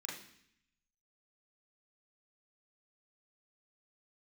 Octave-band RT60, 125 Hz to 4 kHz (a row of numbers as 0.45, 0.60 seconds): 1.0, 0.90, 0.65, 0.70, 0.85, 0.80 seconds